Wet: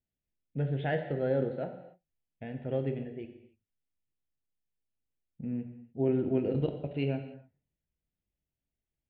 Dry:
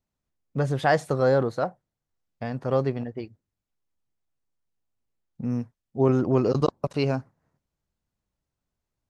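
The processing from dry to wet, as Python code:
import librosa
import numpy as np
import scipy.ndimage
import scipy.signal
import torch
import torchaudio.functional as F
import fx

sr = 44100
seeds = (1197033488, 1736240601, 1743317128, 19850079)

y = scipy.signal.sosfilt(scipy.signal.butter(8, 3500.0, 'lowpass', fs=sr, output='sos'), x)
y = fx.fixed_phaser(y, sr, hz=2700.0, stages=4)
y = fx.rev_gated(y, sr, seeds[0], gate_ms=320, shape='falling', drr_db=5.5)
y = y * librosa.db_to_amplitude(-7.0)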